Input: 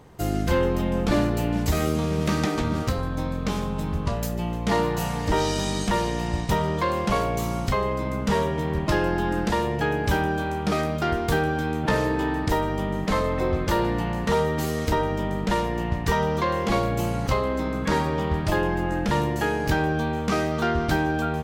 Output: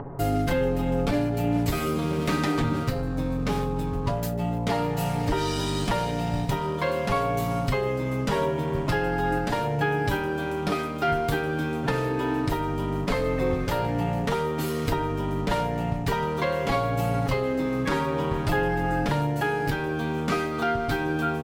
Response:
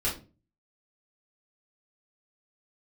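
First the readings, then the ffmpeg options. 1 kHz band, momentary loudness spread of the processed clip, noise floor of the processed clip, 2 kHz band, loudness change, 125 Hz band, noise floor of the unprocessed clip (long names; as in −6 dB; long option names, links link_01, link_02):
−1.5 dB, 3 LU, −29 dBFS, −1.5 dB, −1.5 dB, −1.0 dB, −28 dBFS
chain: -filter_complex "[0:a]equalizer=frequency=6400:width=1.9:gain=-5,aecho=1:1:7.2:0.77,bandreject=frequency=156.4:width_type=h:width=4,bandreject=frequency=312.8:width_type=h:width=4,bandreject=frequency=469.2:width_type=h:width=4,bandreject=frequency=625.6:width_type=h:width=4,bandreject=frequency=782:width_type=h:width=4,bandreject=frequency=938.4:width_type=h:width=4,bandreject=frequency=1094.8:width_type=h:width=4,bandreject=frequency=1251.2:width_type=h:width=4,bandreject=frequency=1407.6:width_type=h:width=4,acrossover=split=860|1300[link_01][link_02][link_03];[link_03]aeval=exprs='sgn(val(0))*max(abs(val(0))-0.00316,0)':channel_layout=same[link_04];[link_01][link_02][link_04]amix=inputs=3:normalize=0,acompressor=mode=upward:threshold=-26dB:ratio=2.5,alimiter=limit=-14.5dB:level=0:latency=1:release=498"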